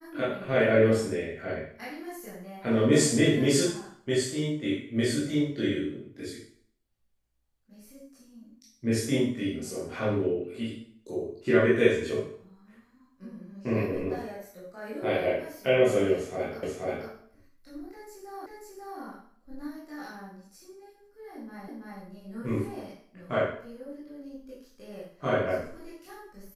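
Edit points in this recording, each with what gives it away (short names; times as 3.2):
16.63 repeat of the last 0.48 s
18.46 repeat of the last 0.54 s
21.68 repeat of the last 0.33 s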